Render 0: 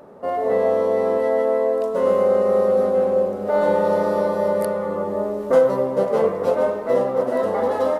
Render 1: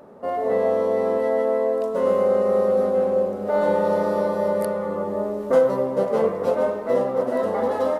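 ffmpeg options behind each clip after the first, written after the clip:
ffmpeg -i in.wav -af "equalizer=frequency=230:width=5.6:gain=4,volume=-2dB" out.wav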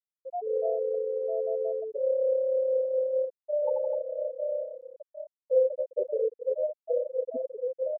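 ffmpeg -i in.wav -af "afftfilt=real='re*gte(hypot(re,im),0.562)':imag='im*gte(hypot(re,im),0.562)':win_size=1024:overlap=0.75,volume=-5.5dB" out.wav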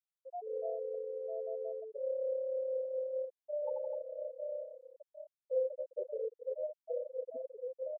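ffmpeg -i in.wav -af "highpass=400,volume=-8.5dB" out.wav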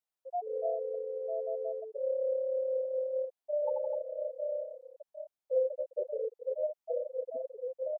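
ffmpeg -i in.wav -af "equalizer=frequency=750:width=1.5:gain=8.5" out.wav

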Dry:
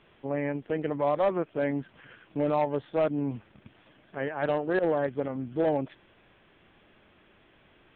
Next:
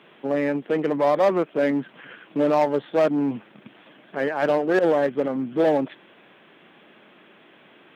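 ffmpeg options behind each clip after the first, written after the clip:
ffmpeg -i in.wav -filter_complex "[0:a]asplit=2[link_01][link_02];[link_02]aeval=exprs='0.0355*(abs(mod(val(0)/0.0355+3,4)-2)-1)':channel_layout=same,volume=-10dB[link_03];[link_01][link_03]amix=inputs=2:normalize=0,highpass=frequency=170:width=0.5412,highpass=frequency=170:width=1.3066,volume=6.5dB" out.wav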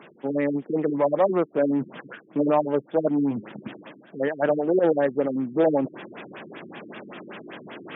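ffmpeg -i in.wav -af "areverse,acompressor=mode=upward:threshold=-25dB:ratio=2.5,areverse,afftfilt=real='re*lt(b*sr/1024,390*pow(3900/390,0.5+0.5*sin(2*PI*5.2*pts/sr)))':imag='im*lt(b*sr/1024,390*pow(3900/390,0.5+0.5*sin(2*PI*5.2*pts/sr)))':win_size=1024:overlap=0.75" out.wav

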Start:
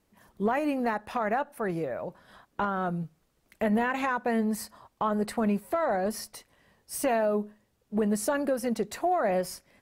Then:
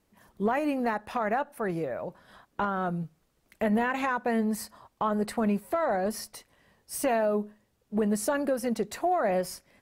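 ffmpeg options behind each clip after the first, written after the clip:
ffmpeg -i in.wav -af anull out.wav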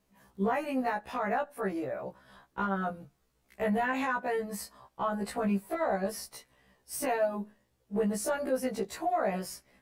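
ffmpeg -i in.wav -af "afftfilt=real='re*1.73*eq(mod(b,3),0)':imag='im*1.73*eq(mod(b,3),0)':win_size=2048:overlap=0.75" out.wav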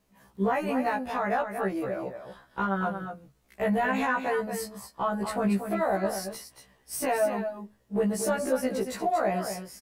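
ffmpeg -i in.wav -af "aecho=1:1:232:0.398,volume=3dB" out.wav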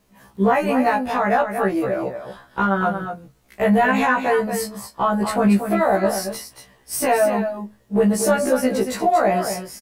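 ffmpeg -i in.wav -filter_complex "[0:a]asplit=2[link_01][link_02];[link_02]adelay=24,volume=-11.5dB[link_03];[link_01][link_03]amix=inputs=2:normalize=0,volume=8.5dB" out.wav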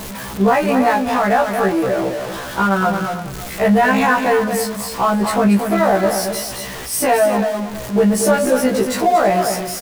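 ffmpeg -i in.wav -filter_complex "[0:a]aeval=exprs='val(0)+0.5*0.0501*sgn(val(0))':channel_layout=same,asplit=2[link_01][link_02];[link_02]adelay=326.5,volume=-13dB,highshelf=frequency=4000:gain=-7.35[link_03];[link_01][link_03]amix=inputs=2:normalize=0,volume=2dB" out.wav

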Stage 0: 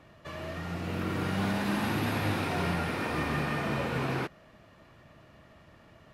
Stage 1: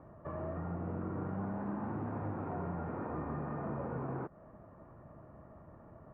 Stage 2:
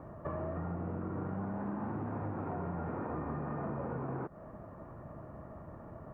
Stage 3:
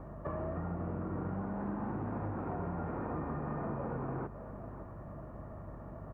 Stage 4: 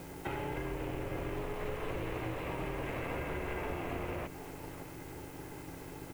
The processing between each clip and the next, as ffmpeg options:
ffmpeg -i in.wav -af "acompressor=threshold=-37dB:ratio=6,lowpass=frequency=1200:width=0.5412,lowpass=frequency=1200:width=1.3066,volume=2dB" out.wav
ffmpeg -i in.wav -af "acompressor=threshold=-41dB:ratio=6,volume=6.5dB" out.wav
ffmpeg -i in.wav -af "aeval=exprs='val(0)+0.00398*(sin(2*PI*50*n/s)+sin(2*PI*2*50*n/s)/2+sin(2*PI*3*50*n/s)/3+sin(2*PI*4*50*n/s)/4+sin(2*PI*5*50*n/s)/5)':channel_layout=same,aecho=1:1:551:0.224" out.wav
ffmpeg -i in.wav -af "aexciter=amount=12.2:drive=9.5:freq=2200,aeval=exprs='val(0)*sin(2*PI*220*n/s)':channel_layout=same,volume=2.5dB" out.wav

